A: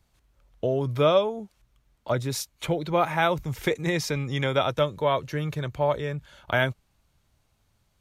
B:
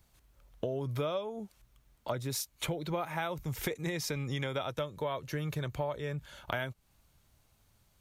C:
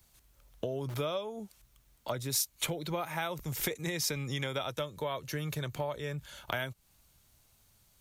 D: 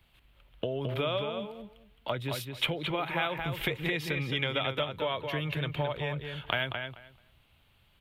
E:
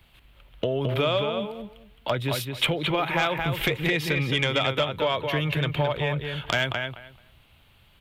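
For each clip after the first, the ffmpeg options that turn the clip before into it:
-af "highshelf=f=10k:g=9.5,acompressor=threshold=-32dB:ratio=6"
-filter_complex "[0:a]highshelf=f=3.3k:g=8.5,acrossover=split=100[a][b];[a]aeval=exprs='(mod(141*val(0)+1,2)-1)/141':c=same[c];[c][b]amix=inputs=2:normalize=0,volume=-1dB"
-filter_complex "[0:a]highshelf=f=4.3k:t=q:w=3:g=-13,asplit=2[a][b];[b]adelay=218,lowpass=f=4.1k:p=1,volume=-5.5dB,asplit=2[c][d];[d]adelay=218,lowpass=f=4.1k:p=1,volume=0.17,asplit=2[e][f];[f]adelay=218,lowpass=f=4.1k:p=1,volume=0.17[g];[a][c][e][g]amix=inputs=4:normalize=0,volume=2dB"
-af "aeval=exprs='0.299*sin(PI/2*2.24*val(0)/0.299)':c=same,volume=-3.5dB"

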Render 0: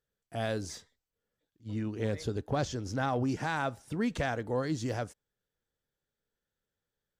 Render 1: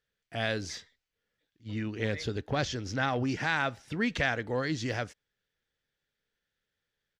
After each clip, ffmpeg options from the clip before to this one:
-af "firequalizer=gain_entry='entry(1000,0);entry(1900,10);entry(5500,4);entry(8700,-6)':delay=0.05:min_phase=1"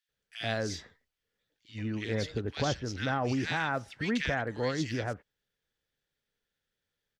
-filter_complex "[0:a]acrossover=split=1800[a][b];[a]adelay=90[c];[c][b]amix=inputs=2:normalize=0"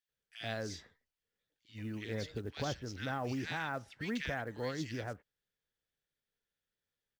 -af "acrusher=bits=8:mode=log:mix=0:aa=0.000001,volume=-7dB"

